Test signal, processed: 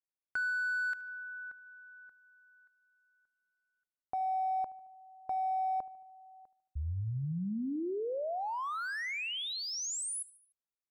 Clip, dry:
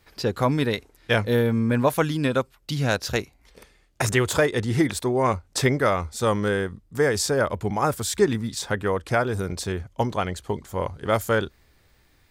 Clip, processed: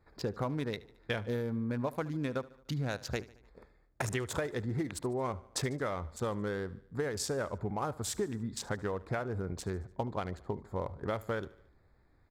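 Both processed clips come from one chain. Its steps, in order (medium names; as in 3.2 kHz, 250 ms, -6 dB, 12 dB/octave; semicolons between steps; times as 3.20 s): local Wiener filter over 15 samples; compression, threshold -26 dBFS; feedback delay 74 ms, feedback 55%, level -20 dB; trim -5 dB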